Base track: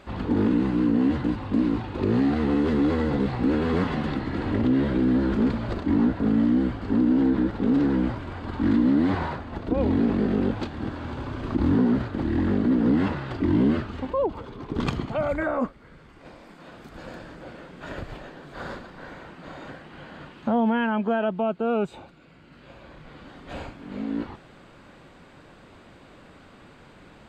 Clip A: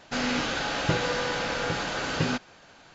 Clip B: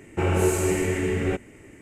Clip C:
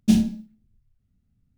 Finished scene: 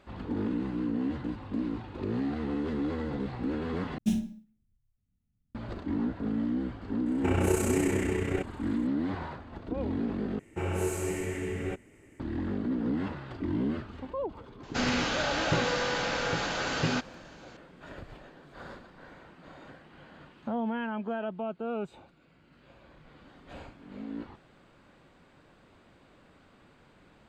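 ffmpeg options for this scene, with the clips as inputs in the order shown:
-filter_complex "[2:a]asplit=2[s0][s1];[0:a]volume=0.335[s2];[3:a]equalizer=f=4600:w=7.3:g=-12.5[s3];[s0]tremolo=f=31:d=0.621[s4];[1:a]asoftclip=type=tanh:threshold=0.178[s5];[s2]asplit=3[s6][s7][s8];[s6]atrim=end=3.984[s9];[s3]atrim=end=1.57,asetpts=PTS-STARTPTS,volume=0.316[s10];[s7]atrim=start=5.546:end=10.394[s11];[s1]atrim=end=1.81,asetpts=PTS-STARTPTS,volume=0.355[s12];[s8]atrim=start=12.196[s13];[s4]atrim=end=1.81,asetpts=PTS-STARTPTS,volume=0.75,afade=t=in:d=0.004:c=hsin,afade=t=out:st=1.806:d=0.004:c=hsin,adelay=311346S[s14];[s5]atrim=end=2.94,asetpts=PTS-STARTPTS,volume=0.891,afade=t=in:d=0.004:c=hsin,afade=t=out:st=2.936:d=0.004:c=hsin,adelay=14630[s15];[s9][s10]acrossfade=d=0.004:c1=hsin:c2=hsin[s16];[s16][s11]acrossfade=d=0.004:c1=hsin:c2=hsin[s17];[s17][s12]acrossfade=d=0.004:c1=hsin:c2=hsin[s18];[s18][s13]acrossfade=d=0.004:c1=hsin:c2=hsin[s19];[s19][s14][s15]amix=inputs=3:normalize=0"

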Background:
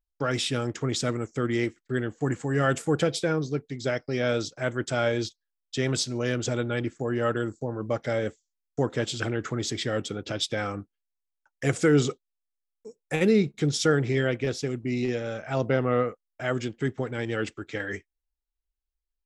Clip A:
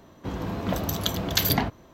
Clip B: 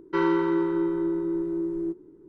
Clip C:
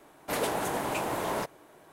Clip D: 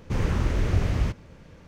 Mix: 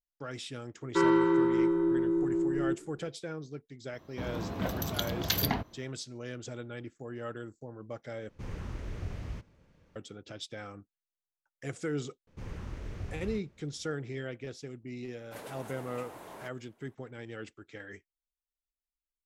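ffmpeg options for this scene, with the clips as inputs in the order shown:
-filter_complex "[4:a]asplit=2[s0][s1];[0:a]volume=0.211[s2];[1:a]equalizer=f=7900:t=o:w=0.37:g=-4.5[s3];[s2]asplit=2[s4][s5];[s4]atrim=end=8.294[s6];[s0]atrim=end=1.67,asetpts=PTS-STARTPTS,volume=0.178[s7];[s5]atrim=start=9.956[s8];[2:a]atrim=end=2.28,asetpts=PTS-STARTPTS,volume=0.891,afade=t=in:d=0.004:c=hsin,afade=t=out:st=2.276:d=0.004:c=hsin,adelay=820[s9];[s3]atrim=end=1.93,asetpts=PTS-STARTPTS,volume=0.501,afade=t=in:d=0.004:c=hsin,afade=t=out:st=1.926:d=0.004:c=hsin,adelay=173313S[s10];[s1]atrim=end=1.67,asetpts=PTS-STARTPTS,volume=0.15,afade=t=in:d=0.004:c=hsin,afade=t=out:st=1.666:d=0.004:c=hsin,adelay=12270[s11];[3:a]atrim=end=1.92,asetpts=PTS-STARTPTS,volume=0.158,afade=t=in:d=0.004:c=hsin,afade=t=out:st=1.916:d=0.004:c=hsin,adelay=15030[s12];[s6][s7]acrossfade=d=0.004:c1=hsin:c2=hsin[s13];[s13][s8]acrossfade=d=0.004:c1=hsin:c2=hsin[s14];[s14][s9][s10][s11][s12]amix=inputs=5:normalize=0"

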